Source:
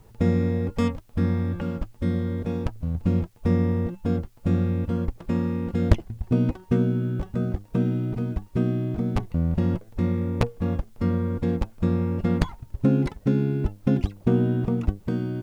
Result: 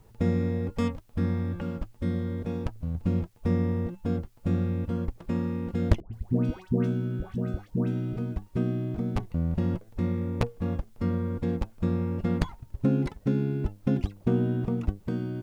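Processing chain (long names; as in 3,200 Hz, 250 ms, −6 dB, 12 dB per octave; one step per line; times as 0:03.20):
0:06.00–0:08.17: all-pass dispersion highs, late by 130 ms, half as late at 1,100 Hz
level −4 dB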